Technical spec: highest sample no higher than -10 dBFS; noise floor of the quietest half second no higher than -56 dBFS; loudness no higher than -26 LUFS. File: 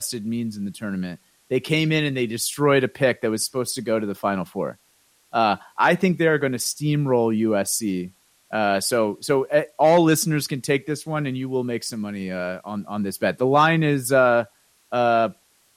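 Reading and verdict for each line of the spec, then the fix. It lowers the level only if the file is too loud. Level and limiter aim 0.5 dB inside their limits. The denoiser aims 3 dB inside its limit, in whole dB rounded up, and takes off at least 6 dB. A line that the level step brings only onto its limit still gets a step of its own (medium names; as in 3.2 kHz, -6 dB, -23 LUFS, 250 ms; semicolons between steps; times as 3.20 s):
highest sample -6.0 dBFS: fail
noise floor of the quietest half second -61 dBFS: pass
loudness -22.0 LUFS: fail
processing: trim -4.5 dB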